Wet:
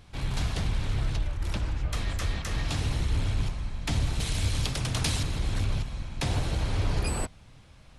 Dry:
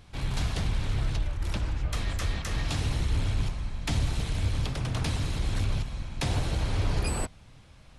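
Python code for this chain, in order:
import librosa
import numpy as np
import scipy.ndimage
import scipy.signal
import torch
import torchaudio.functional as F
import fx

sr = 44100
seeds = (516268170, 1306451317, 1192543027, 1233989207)

y = fx.high_shelf(x, sr, hz=3000.0, db=10.5, at=(4.2, 5.23))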